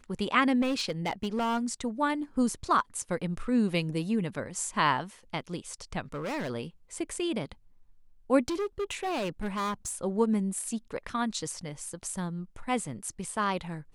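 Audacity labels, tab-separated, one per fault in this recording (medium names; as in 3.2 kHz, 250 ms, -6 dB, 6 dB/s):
0.610000	1.590000	clipped -25 dBFS
6.120000	6.510000	clipped -30.5 dBFS
8.480000	10.040000	clipped -28 dBFS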